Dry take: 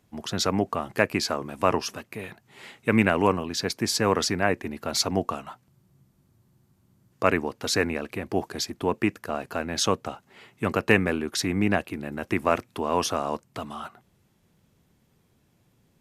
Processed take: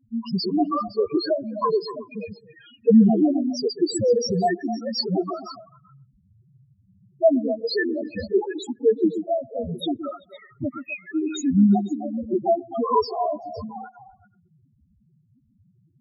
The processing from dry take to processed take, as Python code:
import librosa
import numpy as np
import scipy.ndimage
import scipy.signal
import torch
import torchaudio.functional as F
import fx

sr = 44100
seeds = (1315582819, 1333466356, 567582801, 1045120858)

p1 = fx.spec_ripple(x, sr, per_octave=0.84, drift_hz=-1.5, depth_db=15)
p2 = fx.spec_erase(p1, sr, start_s=8.76, length_s=1.07, low_hz=750.0, high_hz=11000.0)
p3 = fx.differentiator(p2, sr, at=(10.69, 11.15))
p4 = fx.spec_topn(p3, sr, count=2)
p5 = p4 + fx.echo_stepped(p4, sr, ms=128, hz=270.0, octaves=1.4, feedback_pct=70, wet_db=-8.0, dry=0)
y = p5 * librosa.db_to_amplitude(7.0)